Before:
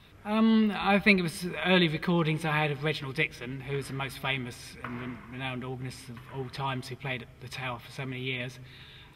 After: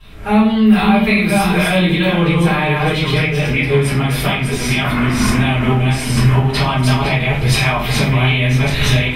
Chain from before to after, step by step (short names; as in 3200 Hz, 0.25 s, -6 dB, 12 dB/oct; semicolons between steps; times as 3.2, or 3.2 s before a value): reverse delay 0.378 s, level -4 dB; recorder AGC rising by 36 dB/s; 0.48–2.2 high shelf 11000 Hz +8 dB; compressor, threshold -23 dBFS, peak gain reduction 8.5 dB; shoebox room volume 43 m³, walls mixed, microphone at 3.1 m; gain -2 dB